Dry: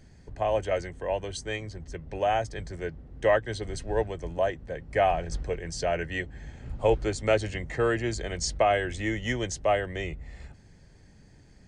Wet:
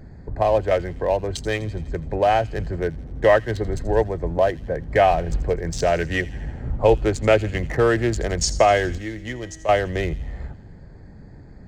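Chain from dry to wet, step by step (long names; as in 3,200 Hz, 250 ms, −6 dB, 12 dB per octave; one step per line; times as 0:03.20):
adaptive Wiener filter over 15 samples
in parallel at +1 dB: downward compressor, threshold −34 dBFS, peak gain reduction 15 dB
0:08.98–0:09.69: on the sum: tuned comb filter 160 Hz, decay 2 s, mix 70%
delay with a high-pass on its return 83 ms, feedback 65%, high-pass 3,100 Hz, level −14 dB
level +5.5 dB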